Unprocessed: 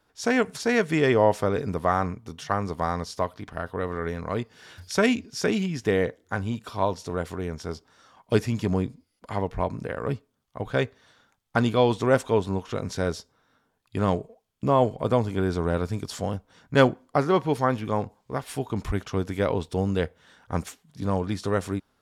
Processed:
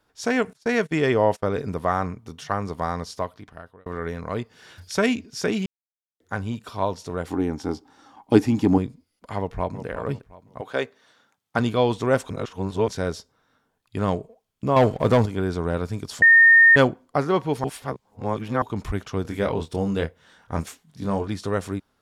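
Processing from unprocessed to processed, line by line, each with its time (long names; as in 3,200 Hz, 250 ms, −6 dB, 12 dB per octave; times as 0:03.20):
0:00.53–0:01.64: noise gate −32 dBFS, range −27 dB
0:03.11–0:03.86: fade out
0:05.66–0:06.20: silence
0:07.27–0:08.78: hollow resonant body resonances 290/810 Hz, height 16 dB
0:09.38–0:09.85: delay throw 360 ms, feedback 30%, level −10.5 dB
0:10.60–0:11.58: high-pass filter 360 Hz → 110 Hz
0:12.30–0:12.88: reverse
0:14.76–0:15.26: leveller curve on the samples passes 2
0:16.22–0:16.76: beep over 1,830 Hz −9 dBFS
0:17.64–0:18.62: reverse
0:19.22–0:21.28: double-tracking delay 25 ms −6 dB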